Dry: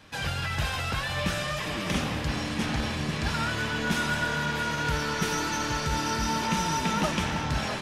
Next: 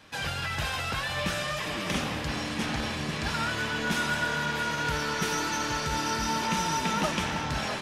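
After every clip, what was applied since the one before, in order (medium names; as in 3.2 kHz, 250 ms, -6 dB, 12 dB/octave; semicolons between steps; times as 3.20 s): bass shelf 180 Hz -6 dB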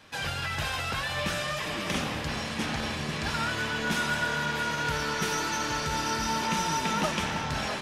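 hum notches 60/120/180/240/300 Hz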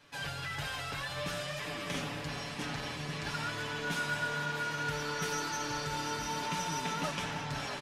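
comb 7 ms; trim -8 dB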